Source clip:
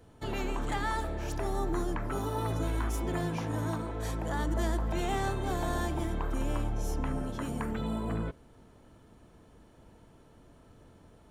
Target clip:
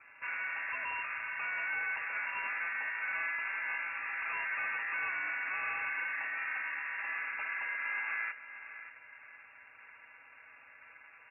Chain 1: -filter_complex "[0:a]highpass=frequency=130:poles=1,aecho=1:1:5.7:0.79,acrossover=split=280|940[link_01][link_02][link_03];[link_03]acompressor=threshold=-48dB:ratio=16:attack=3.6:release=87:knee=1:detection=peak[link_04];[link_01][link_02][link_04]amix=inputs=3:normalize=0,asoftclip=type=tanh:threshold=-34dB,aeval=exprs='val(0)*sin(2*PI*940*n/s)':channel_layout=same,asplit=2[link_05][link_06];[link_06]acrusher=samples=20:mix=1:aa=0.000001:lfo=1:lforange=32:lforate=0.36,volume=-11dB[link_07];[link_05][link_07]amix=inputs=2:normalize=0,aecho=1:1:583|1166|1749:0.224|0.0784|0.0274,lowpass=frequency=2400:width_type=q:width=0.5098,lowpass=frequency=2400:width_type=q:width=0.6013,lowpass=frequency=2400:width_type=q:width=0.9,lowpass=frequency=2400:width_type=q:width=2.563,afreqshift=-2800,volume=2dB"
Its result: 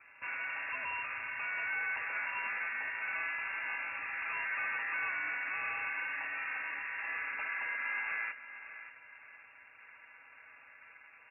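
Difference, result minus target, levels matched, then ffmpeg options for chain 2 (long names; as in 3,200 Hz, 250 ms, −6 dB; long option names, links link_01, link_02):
sample-and-hold swept by an LFO: distortion +13 dB; downward compressor: peak gain reduction −7 dB
-filter_complex "[0:a]highpass=frequency=130:poles=1,aecho=1:1:5.7:0.79,acrossover=split=280|940[link_01][link_02][link_03];[link_03]acompressor=threshold=-55.5dB:ratio=16:attack=3.6:release=87:knee=1:detection=peak[link_04];[link_01][link_02][link_04]amix=inputs=3:normalize=0,asoftclip=type=tanh:threshold=-34dB,aeval=exprs='val(0)*sin(2*PI*940*n/s)':channel_layout=same,asplit=2[link_05][link_06];[link_06]acrusher=samples=5:mix=1:aa=0.000001:lfo=1:lforange=8:lforate=0.36,volume=-11dB[link_07];[link_05][link_07]amix=inputs=2:normalize=0,aecho=1:1:583|1166|1749:0.224|0.0784|0.0274,lowpass=frequency=2400:width_type=q:width=0.5098,lowpass=frequency=2400:width_type=q:width=0.6013,lowpass=frequency=2400:width_type=q:width=0.9,lowpass=frequency=2400:width_type=q:width=2.563,afreqshift=-2800,volume=2dB"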